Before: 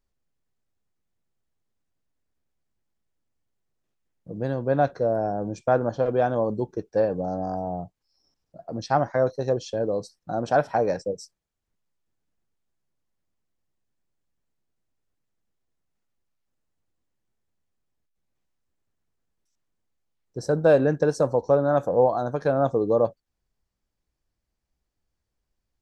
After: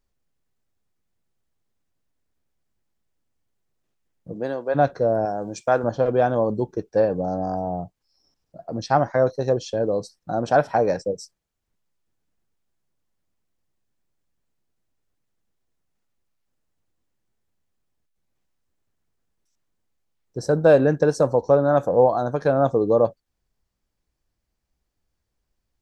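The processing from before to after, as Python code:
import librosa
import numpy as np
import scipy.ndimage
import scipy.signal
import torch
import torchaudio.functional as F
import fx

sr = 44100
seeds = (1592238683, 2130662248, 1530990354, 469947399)

y = fx.highpass(x, sr, hz=fx.line((4.33, 200.0), (4.74, 580.0)), slope=12, at=(4.33, 4.74), fade=0.02)
y = fx.tilt_eq(y, sr, slope=2.5, at=(5.25, 5.84))
y = F.gain(torch.from_numpy(y), 3.0).numpy()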